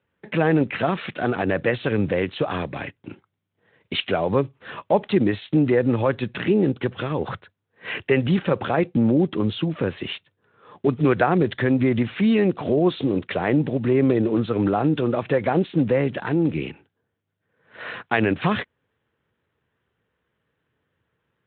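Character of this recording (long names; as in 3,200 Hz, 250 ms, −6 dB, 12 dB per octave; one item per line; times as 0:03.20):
Speex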